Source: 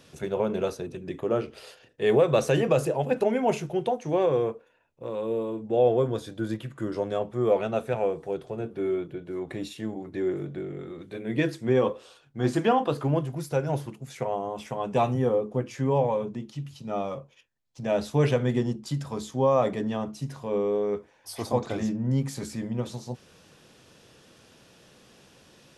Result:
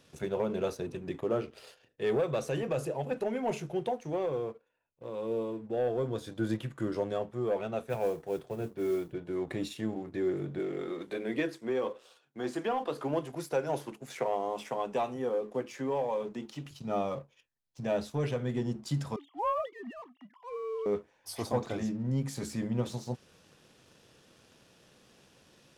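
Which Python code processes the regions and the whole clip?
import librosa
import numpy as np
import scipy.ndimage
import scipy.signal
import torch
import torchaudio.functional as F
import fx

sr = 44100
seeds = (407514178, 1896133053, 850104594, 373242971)

y = fx.chain(x, sr, fx.mod_noise(seeds[0], snr_db=27),
    fx.band_widen(depth_pct=40), at=(7.84, 9.13))
y = fx.chain(y, sr, fx.highpass(hz=280.0, slope=12),
    fx.band_squash(depth_pct=40), at=(10.59, 16.71))
y = fx.chain(y, sr, fx.sine_speech(),
    fx.highpass(hz=380.0, slope=12),
    fx.comb(ms=1.0, depth=0.62), at=(19.16, 20.86))
y = fx.leveller(y, sr, passes=1)
y = fx.rider(y, sr, range_db=4, speed_s=0.5)
y = y * 10.0 ** (-8.5 / 20.0)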